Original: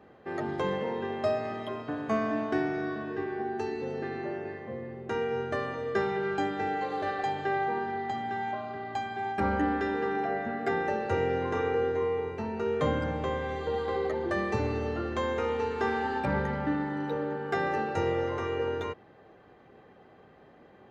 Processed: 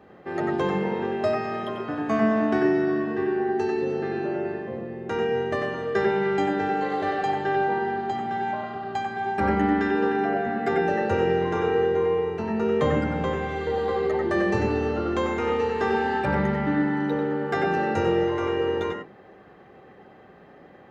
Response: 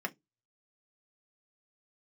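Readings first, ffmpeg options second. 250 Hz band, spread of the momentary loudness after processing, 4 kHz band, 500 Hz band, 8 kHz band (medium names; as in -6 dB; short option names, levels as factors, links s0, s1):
+8.0 dB, 6 LU, +5.0 dB, +6.0 dB, no reading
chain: -filter_complex "[0:a]asplit=2[s0][s1];[1:a]atrim=start_sample=2205,adelay=93[s2];[s1][s2]afir=irnorm=-1:irlink=0,volume=0.596[s3];[s0][s3]amix=inputs=2:normalize=0,volume=1.5"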